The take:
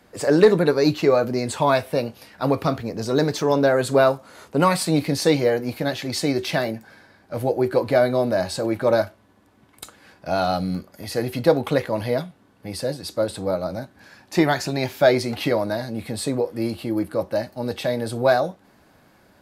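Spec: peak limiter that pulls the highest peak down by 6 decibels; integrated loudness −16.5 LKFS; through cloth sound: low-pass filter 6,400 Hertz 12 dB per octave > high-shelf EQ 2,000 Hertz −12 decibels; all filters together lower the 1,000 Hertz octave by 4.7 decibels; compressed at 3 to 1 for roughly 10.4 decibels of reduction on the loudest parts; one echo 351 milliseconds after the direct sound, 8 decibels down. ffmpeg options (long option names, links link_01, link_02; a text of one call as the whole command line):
ffmpeg -i in.wav -af "equalizer=frequency=1000:width_type=o:gain=-4,acompressor=threshold=-24dB:ratio=3,alimiter=limit=-18dB:level=0:latency=1,lowpass=6400,highshelf=frequency=2000:gain=-12,aecho=1:1:351:0.398,volume=14dB" out.wav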